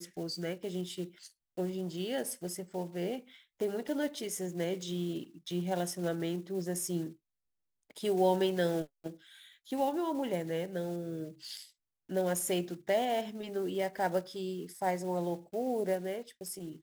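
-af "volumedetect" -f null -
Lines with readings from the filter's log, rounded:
mean_volume: -35.1 dB
max_volume: -17.6 dB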